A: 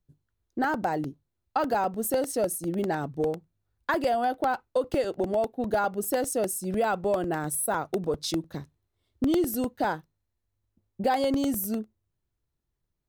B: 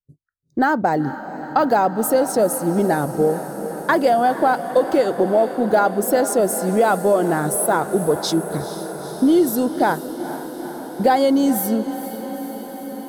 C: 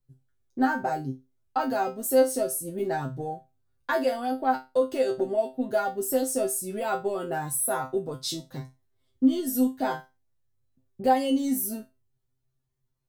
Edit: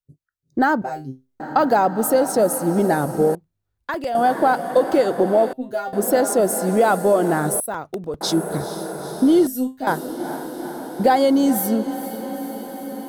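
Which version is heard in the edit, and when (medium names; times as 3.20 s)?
B
0.82–1.40 s: from C
3.35–4.15 s: from A
5.53–5.93 s: from C
7.60–8.21 s: from A
9.47–9.87 s: from C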